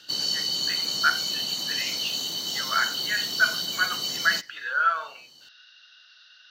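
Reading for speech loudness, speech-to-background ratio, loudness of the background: -27.5 LUFS, -1.5 dB, -26.0 LUFS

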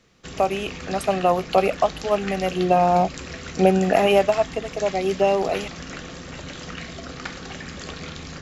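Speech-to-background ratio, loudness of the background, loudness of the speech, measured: 13.0 dB, -34.5 LUFS, -21.5 LUFS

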